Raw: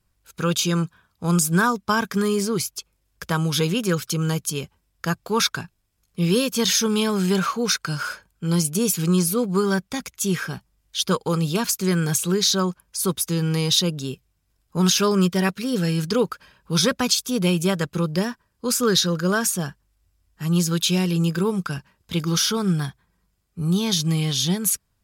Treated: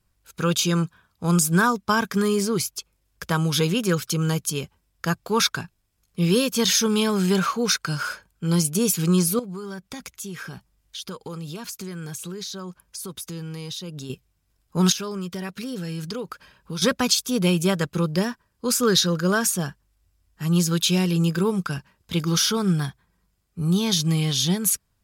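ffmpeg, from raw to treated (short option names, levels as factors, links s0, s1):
-filter_complex "[0:a]asettb=1/sr,asplit=3[s0][s1][s2];[s0]atrim=end=9.394[s3];[s1]atrim=start=9.39:end=14.1,asetpts=PTS-STARTPTS,afade=t=in:d=0.004:c=qsin,afade=t=out:st=4.706:d=0.004:c=qsin,acompressor=threshold=0.0251:ratio=5:attack=3.2:release=140:knee=1:detection=peak[s4];[s2]atrim=start=14.096[s5];[s3][s4]acrossfade=d=0.004:c1=hsin:c2=qsin[s6];[s6][s5]acrossfade=d=0.004:c1=qsin:c2=hsin,asettb=1/sr,asplit=3[s7][s8][s9];[s7]atrim=end=14.924[s10];[s8]atrim=start=14.92:end=16.82,asetpts=PTS-STARTPTS,afade=t=in:d=0.004:c=qsin,afade=t=out:st=1.896:d=0.004:c=qsin,acompressor=threshold=0.0355:ratio=4:attack=3.2:release=140:knee=1:detection=peak[s11];[s9]atrim=start=16.816[s12];[s10][s11]acrossfade=d=0.004:c1=hsin:c2=qsin[s13];[s13][s12]acrossfade=d=0.004:c1=qsin:c2=hsin"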